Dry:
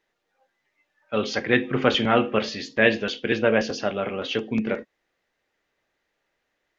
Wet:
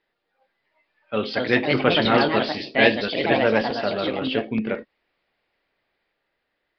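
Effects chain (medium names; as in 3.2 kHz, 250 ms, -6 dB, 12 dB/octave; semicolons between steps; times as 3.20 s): ever faster or slower copies 417 ms, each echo +3 st, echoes 2; resampled via 11.025 kHz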